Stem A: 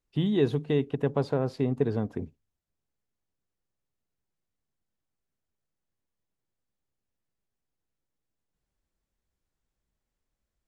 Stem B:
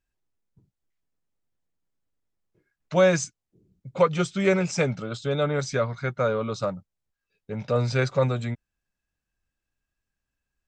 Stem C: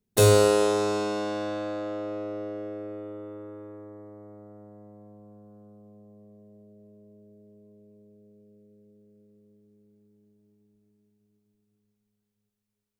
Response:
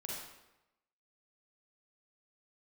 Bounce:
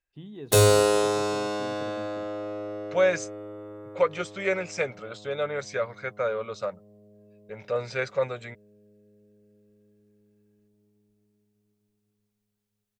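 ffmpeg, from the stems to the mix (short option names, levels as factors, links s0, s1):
-filter_complex "[0:a]volume=0.141[s0];[1:a]equalizer=f=125:t=o:w=1:g=-7,equalizer=f=250:t=o:w=1:g=-9,equalizer=f=500:t=o:w=1:g=7,equalizer=f=2000:t=o:w=1:g=8,volume=0.422[s1];[2:a]equalizer=f=220:w=0.61:g=-5,adelay=350,volume=1.26[s2];[s0][s1][s2]amix=inputs=3:normalize=0"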